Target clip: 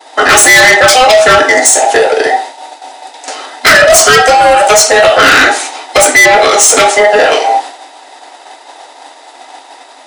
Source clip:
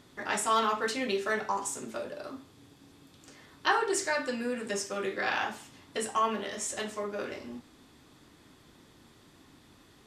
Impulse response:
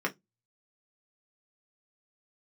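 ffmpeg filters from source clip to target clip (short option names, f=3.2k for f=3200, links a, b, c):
-filter_complex "[0:a]afftfilt=real='real(if(between(b,1,1008),(2*floor((b-1)/48)+1)*48-b,b),0)':imag='imag(if(between(b,1,1008),(2*floor((b-1)/48)+1)*48-b,b),0)*if(between(b,1,1008),-1,1)':win_size=2048:overlap=0.75,afftfilt=real='re*between(b*sr/4096,250,11000)':imag='im*between(b*sr/4096,250,11000)':win_size=4096:overlap=0.75,adynamicequalizer=threshold=0.00562:dfrequency=2600:dqfactor=2:tfrequency=2600:tqfactor=2:attack=5:release=100:ratio=0.375:range=3:mode=cutabove:tftype=bell,acrossover=split=400[a][b];[a]acompressor=threshold=-52dB:ratio=6[c];[b]asoftclip=type=tanh:threshold=-30.5dB[d];[c][d]amix=inputs=2:normalize=0,apsyclip=35dB,agate=range=-33dB:threshold=-15dB:ratio=3:detection=peak,volume=-1.5dB"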